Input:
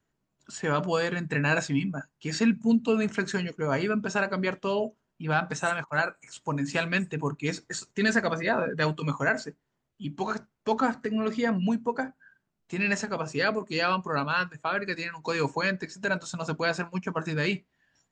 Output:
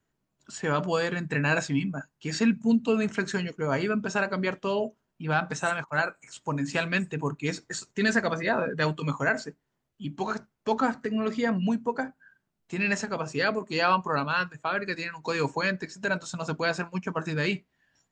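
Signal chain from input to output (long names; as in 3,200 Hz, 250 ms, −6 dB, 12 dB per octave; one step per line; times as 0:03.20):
0:13.68–0:14.16: parametric band 890 Hz +6.5 dB 0.84 octaves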